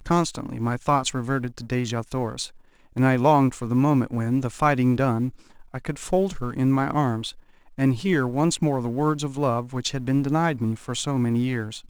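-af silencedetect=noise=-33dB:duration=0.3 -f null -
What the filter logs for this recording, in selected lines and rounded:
silence_start: 2.47
silence_end: 2.96 | silence_duration: 0.49
silence_start: 5.30
silence_end: 5.74 | silence_duration: 0.44
silence_start: 7.31
silence_end: 7.78 | silence_duration: 0.47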